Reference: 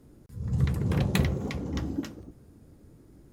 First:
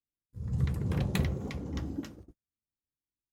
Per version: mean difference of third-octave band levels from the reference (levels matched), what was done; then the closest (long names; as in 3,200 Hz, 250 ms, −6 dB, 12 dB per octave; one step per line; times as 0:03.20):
5.0 dB: noise gate −43 dBFS, range −45 dB
low-shelf EQ 71 Hz +5 dB
level −5.5 dB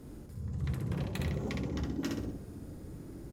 8.5 dB: reversed playback
downward compressor 5 to 1, threshold −41 dBFS, peak gain reduction 19.5 dB
reversed playback
repeating echo 63 ms, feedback 38%, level −3.5 dB
level +6 dB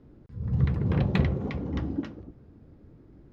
3.0 dB: high-frequency loss of the air 260 metres
level +1.5 dB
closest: third